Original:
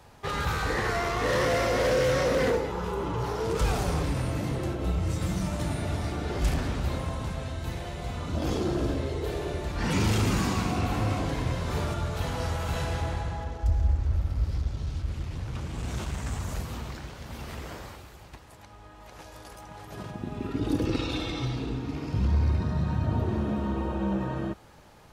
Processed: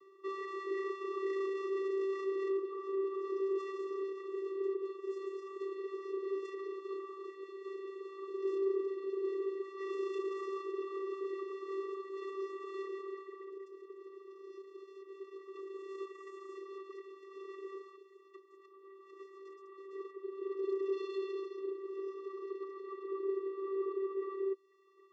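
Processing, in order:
low-pass filter 2,500 Hz 6 dB per octave
reverb reduction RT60 1.1 s
high-pass filter 240 Hz 12 dB per octave
soft clipping −34 dBFS, distortion −8 dB
channel vocoder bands 16, square 388 Hz
level +2 dB

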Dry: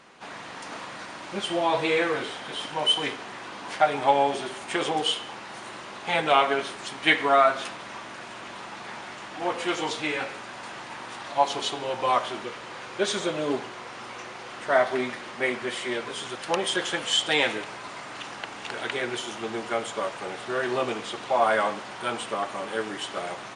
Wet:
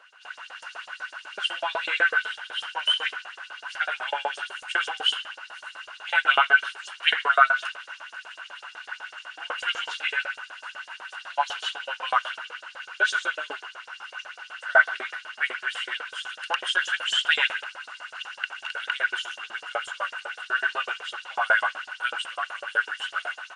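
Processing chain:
auto-filter high-pass saw up 8 Hz 490–7,000 Hz
dynamic equaliser 1,700 Hz, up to +5 dB, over −36 dBFS, Q 0.86
hollow resonant body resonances 1,500/2,800 Hz, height 17 dB, ringing for 25 ms
level −9 dB

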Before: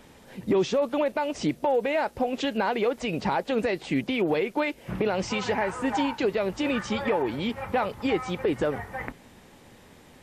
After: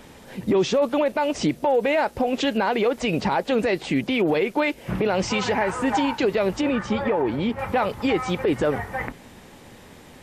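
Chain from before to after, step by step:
brickwall limiter −19 dBFS, peak gain reduction 5.5 dB
0:06.61–0:07.59: high-shelf EQ 2,400 Hz −10 dB
level +6 dB

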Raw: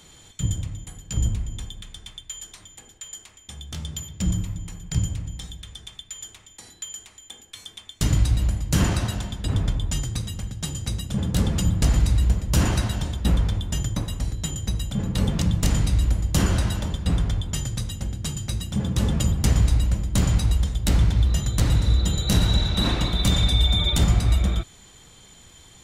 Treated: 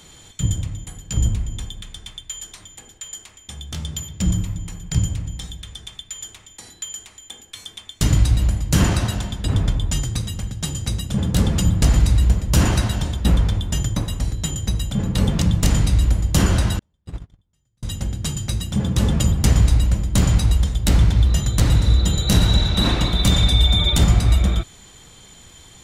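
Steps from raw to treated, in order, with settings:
0:16.79–0:17.83: noise gate −17 dBFS, range −46 dB
level +4 dB

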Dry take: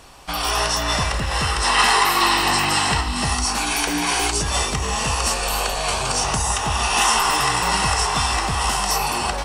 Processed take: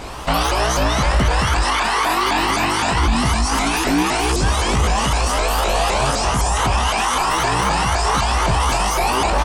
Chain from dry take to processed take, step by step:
in parallel at +1.5 dB: compressor whose output falls as the input rises −24 dBFS
on the sum: double-tracking delay 17 ms −6 dB
brickwall limiter −13.5 dBFS, peak gain reduction 12 dB
high-shelf EQ 2,500 Hz −8 dB
pitch modulation by a square or saw wave saw up 3.9 Hz, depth 250 cents
level +6.5 dB

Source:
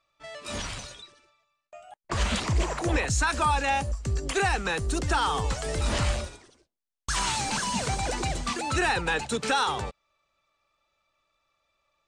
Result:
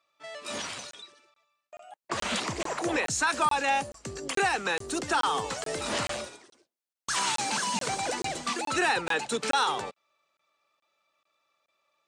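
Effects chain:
high-pass filter 240 Hz 12 dB per octave
regular buffer underruns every 0.43 s, samples 1,024, zero, from 0:00.91

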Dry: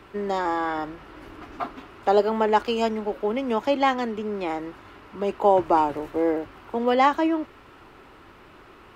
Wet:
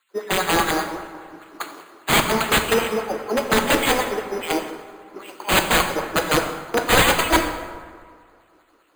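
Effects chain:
notch filter 930 Hz, Q 29
auto-filter high-pass sine 5 Hz 300–2,700 Hz
in parallel at −1 dB: downward compressor 8 to 1, threshold −27 dBFS, peak gain reduction 17.5 dB
on the sum: decimation without filtering 8×
wrap-around overflow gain 12.5 dB
dense smooth reverb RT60 3.8 s, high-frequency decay 0.5×, DRR 3 dB
multiband upward and downward expander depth 100%

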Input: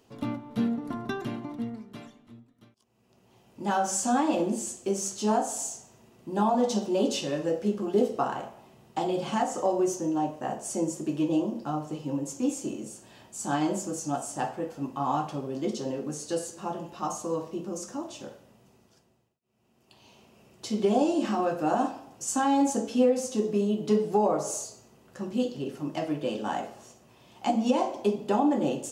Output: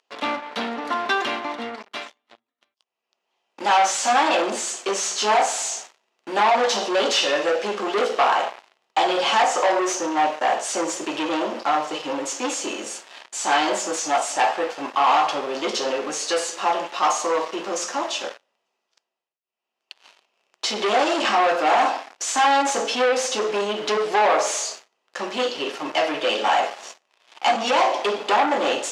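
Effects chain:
spectral tilt +2.5 dB per octave
notch filter 1,500 Hz, Q 27
leveller curve on the samples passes 5
band-pass filter 580–3,800 Hz

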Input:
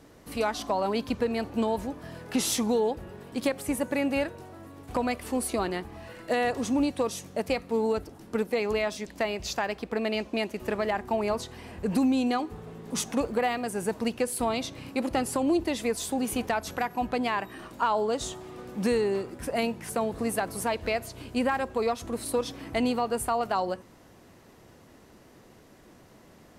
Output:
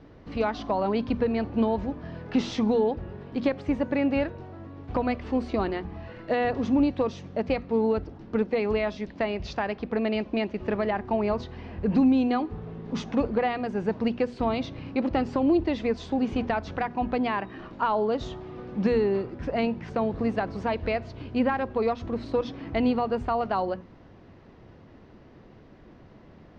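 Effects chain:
Bessel low-pass filter 3,100 Hz, order 8
low-shelf EQ 240 Hz +8.5 dB
mains-hum notches 60/120/180/240 Hz

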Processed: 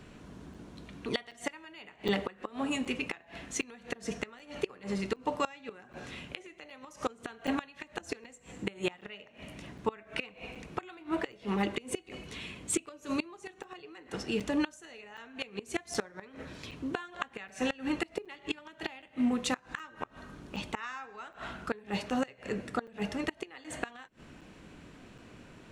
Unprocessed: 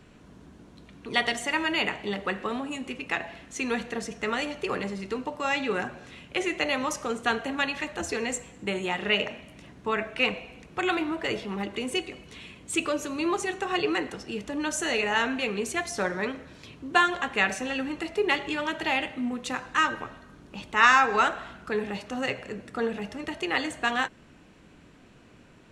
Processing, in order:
gate with flip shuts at −20 dBFS, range −25 dB
regular buffer underruns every 0.77 s, samples 256, zero, from 0:00.54
level +2 dB

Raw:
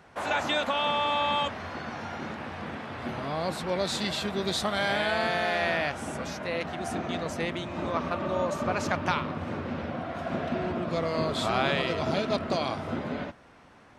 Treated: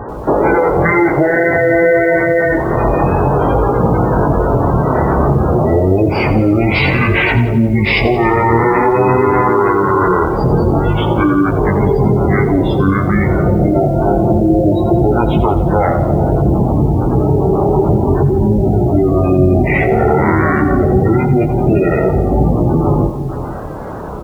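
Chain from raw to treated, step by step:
high-shelf EQ 4,800 Hz −3.5 dB
notch filter 7,300 Hz, Q 17
slap from a distant wall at 46 metres, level −19 dB
flanger 0.46 Hz, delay 9.5 ms, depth 10 ms, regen +11%
low-shelf EQ 66 Hz +5 dB
soft clipping −20.5 dBFS, distortion −23 dB
downward compressor 10 to 1, threshold −41 dBFS, peak gain reduction 14.5 dB
gate on every frequency bin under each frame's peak −20 dB strong
wrong playback speed 78 rpm record played at 45 rpm
boost into a limiter +35.5 dB
feedback echo at a low word length 87 ms, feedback 55%, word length 6 bits, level −12 dB
level −2.5 dB

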